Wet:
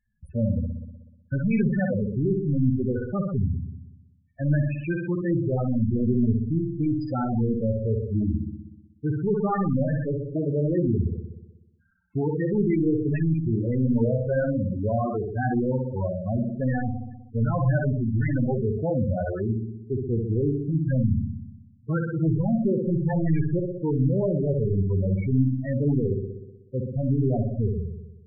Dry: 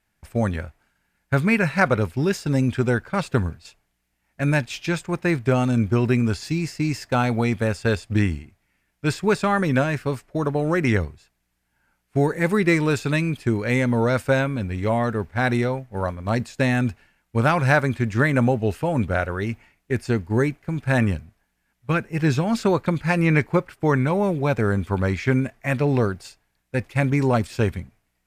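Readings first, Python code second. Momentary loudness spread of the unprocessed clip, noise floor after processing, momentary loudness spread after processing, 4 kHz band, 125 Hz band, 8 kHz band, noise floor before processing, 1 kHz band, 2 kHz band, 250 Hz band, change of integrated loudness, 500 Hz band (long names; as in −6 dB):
8 LU, −56 dBFS, 8 LU, below −30 dB, −1.0 dB, below −40 dB, −73 dBFS, −9.5 dB, −14.5 dB, −1.5 dB, −3.0 dB, −4.0 dB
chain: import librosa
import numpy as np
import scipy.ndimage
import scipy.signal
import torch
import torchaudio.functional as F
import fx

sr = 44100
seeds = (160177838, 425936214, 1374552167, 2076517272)

y = np.clip(10.0 ** (20.5 / 20.0) * x, -1.0, 1.0) / 10.0 ** (20.5 / 20.0)
y = fx.room_flutter(y, sr, wall_m=10.6, rt60_s=1.1)
y = fx.spec_topn(y, sr, count=8)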